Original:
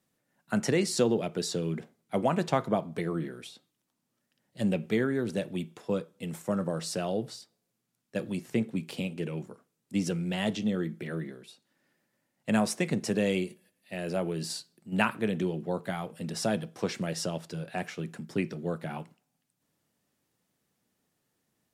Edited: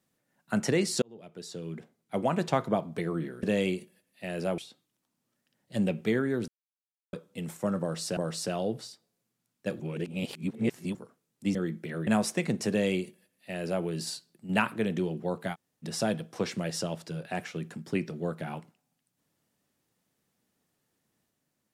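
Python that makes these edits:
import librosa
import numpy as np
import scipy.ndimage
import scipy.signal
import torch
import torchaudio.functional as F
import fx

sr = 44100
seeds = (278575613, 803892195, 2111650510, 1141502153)

y = fx.edit(x, sr, fx.fade_in_span(start_s=1.02, length_s=1.43),
    fx.silence(start_s=5.33, length_s=0.65),
    fx.repeat(start_s=6.66, length_s=0.36, count=2),
    fx.reverse_span(start_s=8.29, length_s=1.15),
    fx.cut(start_s=10.04, length_s=0.68),
    fx.cut(start_s=11.24, length_s=1.26),
    fx.duplicate(start_s=13.12, length_s=1.15, to_s=3.43),
    fx.room_tone_fill(start_s=15.97, length_s=0.3, crossfade_s=0.04), tone=tone)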